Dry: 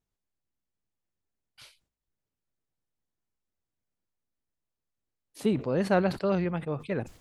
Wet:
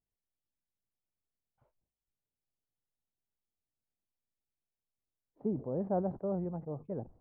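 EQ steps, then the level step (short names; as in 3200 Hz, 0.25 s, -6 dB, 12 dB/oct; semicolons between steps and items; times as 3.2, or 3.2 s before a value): Chebyshev low-pass 810 Hz, order 3; -7.0 dB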